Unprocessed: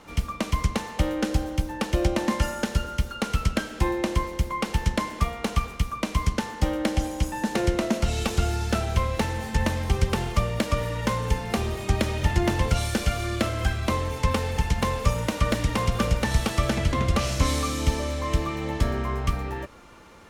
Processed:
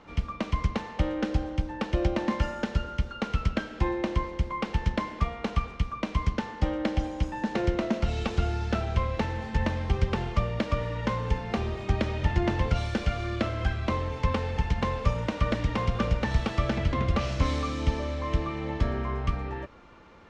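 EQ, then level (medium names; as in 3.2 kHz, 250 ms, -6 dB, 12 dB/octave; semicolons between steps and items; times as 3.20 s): distance through air 160 m; -2.5 dB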